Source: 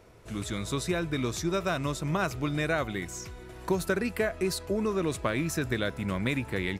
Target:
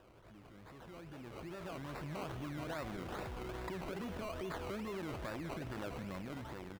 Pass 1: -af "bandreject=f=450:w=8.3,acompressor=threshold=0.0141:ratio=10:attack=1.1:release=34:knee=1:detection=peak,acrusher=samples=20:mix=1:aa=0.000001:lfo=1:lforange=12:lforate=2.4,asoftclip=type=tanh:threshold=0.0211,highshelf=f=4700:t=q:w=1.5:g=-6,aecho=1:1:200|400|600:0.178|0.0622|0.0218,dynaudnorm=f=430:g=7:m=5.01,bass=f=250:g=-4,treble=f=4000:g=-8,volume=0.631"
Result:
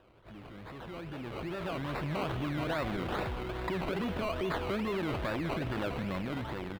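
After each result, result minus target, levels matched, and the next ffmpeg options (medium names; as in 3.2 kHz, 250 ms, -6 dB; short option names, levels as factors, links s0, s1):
compression: peak gain reduction -10 dB; 8 kHz band -7.5 dB
-af "bandreject=f=450:w=8.3,acompressor=threshold=0.00398:ratio=10:attack=1.1:release=34:knee=1:detection=peak,acrusher=samples=20:mix=1:aa=0.000001:lfo=1:lforange=12:lforate=2.4,asoftclip=type=tanh:threshold=0.0211,highshelf=f=4700:t=q:w=1.5:g=-6,aecho=1:1:200|400|600:0.178|0.0622|0.0218,dynaudnorm=f=430:g=7:m=5.01,bass=f=250:g=-4,treble=f=4000:g=-8,volume=0.631"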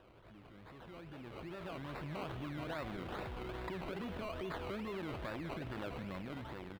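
8 kHz band -7.5 dB
-af "bandreject=f=450:w=8.3,acompressor=threshold=0.00398:ratio=10:attack=1.1:release=34:knee=1:detection=peak,acrusher=samples=20:mix=1:aa=0.000001:lfo=1:lforange=12:lforate=2.4,asoftclip=type=tanh:threshold=0.0211,aecho=1:1:200|400|600:0.178|0.0622|0.0218,dynaudnorm=f=430:g=7:m=5.01,bass=f=250:g=-4,treble=f=4000:g=-8,volume=0.631"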